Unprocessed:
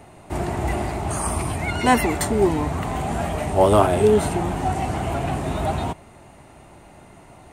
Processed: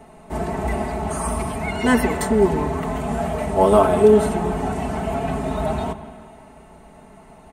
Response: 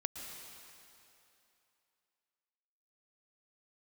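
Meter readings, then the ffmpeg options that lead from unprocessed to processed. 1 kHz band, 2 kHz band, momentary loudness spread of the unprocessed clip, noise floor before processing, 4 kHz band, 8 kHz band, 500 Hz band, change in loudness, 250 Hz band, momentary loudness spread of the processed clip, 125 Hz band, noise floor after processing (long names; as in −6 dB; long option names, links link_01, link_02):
−0.5 dB, 0.0 dB, 10 LU, −47 dBFS, −3.0 dB, −3.0 dB, +2.5 dB, +1.5 dB, +2.5 dB, 12 LU, −2.0 dB, −46 dBFS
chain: -filter_complex "[0:a]aecho=1:1:4.6:0.83,asplit=2[link_01][link_02];[1:a]atrim=start_sample=2205,asetrate=61740,aresample=44100,lowpass=2200[link_03];[link_02][link_03]afir=irnorm=-1:irlink=0,volume=0dB[link_04];[link_01][link_04]amix=inputs=2:normalize=0,volume=-5dB"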